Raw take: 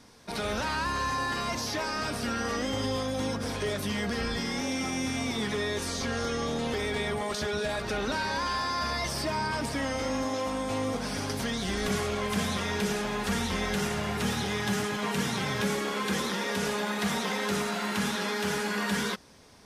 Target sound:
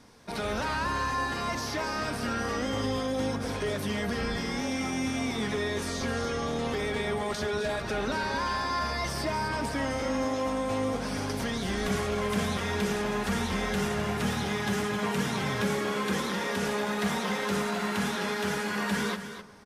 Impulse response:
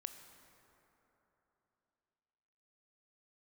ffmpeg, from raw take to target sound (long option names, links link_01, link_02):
-filter_complex "[0:a]aecho=1:1:260:0.299,asplit=2[link_01][link_02];[1:a]atrim=start_sample=2205,lowpass=3100[link_03];[link_02][link_03]afir=irnorm=-1:irlink=0,volume=-4dB[link_04];[link_01][link_04]amix=inputs=2:normalize=0,volume=-2.5dB"